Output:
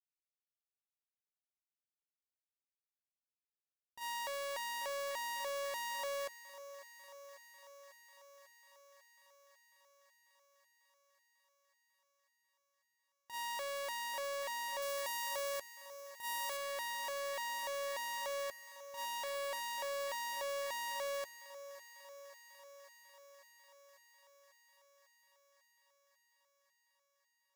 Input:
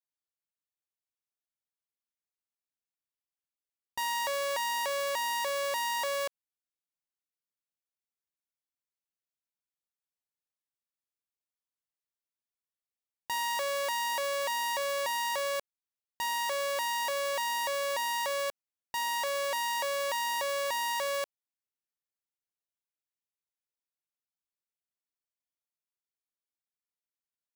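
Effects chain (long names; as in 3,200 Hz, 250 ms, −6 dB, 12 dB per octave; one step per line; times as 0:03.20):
noise gate −28 dBFS, range −35 dB
0:14.82–0:16.57: high-shelf EQ 6,200 Hz +6.5 dB
feedback echo with a high-pass in the loop 545 ms, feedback 77%, high-pass 320 Hz, level −15 dB
level +16.5 dB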